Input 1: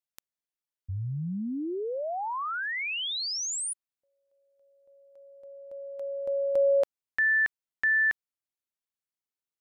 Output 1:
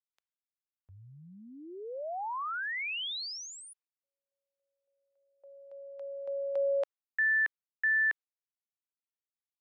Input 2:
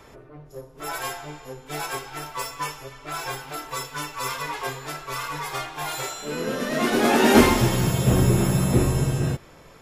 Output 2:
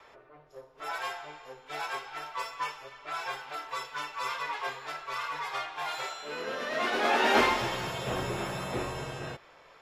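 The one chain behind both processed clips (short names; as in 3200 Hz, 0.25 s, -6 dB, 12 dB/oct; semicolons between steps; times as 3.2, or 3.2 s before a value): gate with hold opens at -47 dBFS, range -16 dB; three-band isolator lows -17 dB, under 490 Hz, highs -17 dB, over 5000 Hz; gain -3 dB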